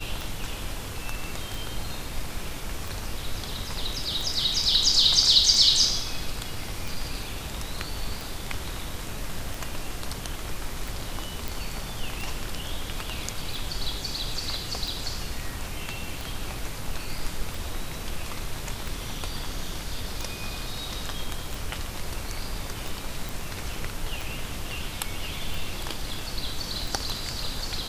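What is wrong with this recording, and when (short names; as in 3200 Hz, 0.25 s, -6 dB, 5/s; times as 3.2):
tick 45 rpm
11.48 pop
23.29 pop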